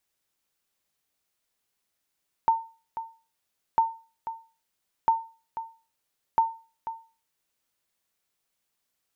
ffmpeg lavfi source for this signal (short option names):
-f lavfi -i "aevalsrc='0.211*(sin(2*PI*906*mod(t,1.3))*exp(-6.91*mod(t,1.3)/0.35)+0.237*sin(2*PI*906*max(mod(t,1.3)-0.49,0))*exp(-6.91*max(mod(t,1.3)-0.49,0)/0.35))':d=5.2:s=44100"